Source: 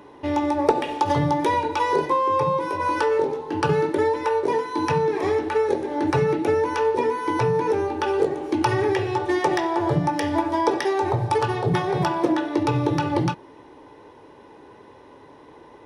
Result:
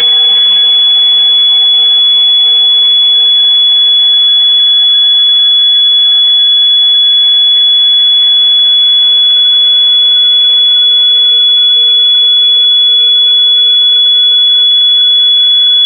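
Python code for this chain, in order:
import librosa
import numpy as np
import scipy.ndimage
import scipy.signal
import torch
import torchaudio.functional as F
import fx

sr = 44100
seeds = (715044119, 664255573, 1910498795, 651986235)

y = scipy.signal.sosfilt(scipy.signal.butter(2, 1400.0, 'highpass', fs=sr, output='sos'), x)
y = fx.spec_gate(y, sr, threshold_db=-30, keep='strong')
y = fx.paulstretch(y, sr, seeds[0], factor=33.0, window_s=0.25, from_s=1.16)
y = np.abs(y)
y = fx.echo_feedback(y, sr, ms=659, feedback_pct=55, wet_db=-4.0)
y = fx.room_shoebox(y, sr, seeds[1], volume_m3=240.0, walls='furnished', distance_m=1.8)
y = fx.freq_invert(y, sr, carrier_hz=3400)
y = fx.env_flatten(y, sr, amount_pct=100)
y = y * librosa.db_to_amplitude(-7.5)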